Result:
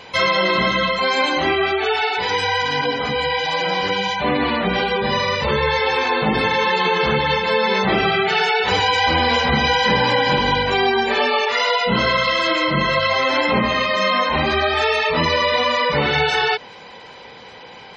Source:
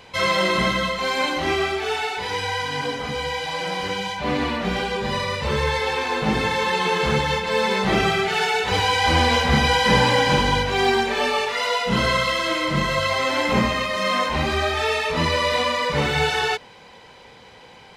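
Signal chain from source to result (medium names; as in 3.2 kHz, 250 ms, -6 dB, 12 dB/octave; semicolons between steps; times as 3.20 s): spectral gate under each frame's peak -25 dB strong; bass shelf 120 Hz -9.5 dB; compression 3:1, threshold -22 dBFS, peak gain reduction 7.5 dB; trim +7 dB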